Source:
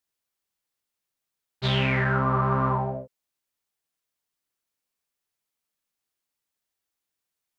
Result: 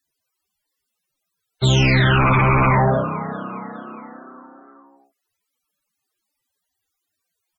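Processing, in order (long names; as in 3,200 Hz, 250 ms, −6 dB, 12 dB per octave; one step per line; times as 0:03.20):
echo with shifted repeats 410 ms, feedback 54%, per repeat +30 Hz, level −17.5 dB
sine wavefolder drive 11 dB, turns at −11.5 dBFS
spectral peaks only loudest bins 64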